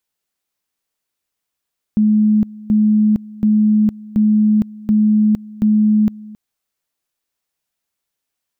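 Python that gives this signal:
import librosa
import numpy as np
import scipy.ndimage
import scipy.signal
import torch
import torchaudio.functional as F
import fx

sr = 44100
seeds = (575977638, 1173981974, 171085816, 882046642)

y = fx.two_level_tone(sr, hz=213.0, level_db=-9.5, drop_db=21.5, high_s=0.46, low_s=0.27, rounds=6)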